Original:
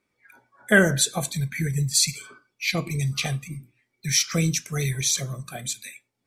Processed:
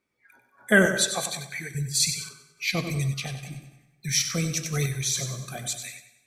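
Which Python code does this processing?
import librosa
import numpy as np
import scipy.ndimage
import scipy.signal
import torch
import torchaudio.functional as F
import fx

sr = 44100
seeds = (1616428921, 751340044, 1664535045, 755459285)

y = fx.weighting(x, sr, curve='A', at=(0.86, 1.75))
y = fx.echo_feedback(y, sr, ms=95, feedback_pct=43, wet_db=-9.5)
y = fx.rev_plate(y, sr, seeds[0], rt60_s=1.1, hf_ratio=0.75, predelay_ms=100, drr_db=16.0)
y = fx.tremolo_random(y, sr, seeds[1], hz=3.5, depth_pct=55)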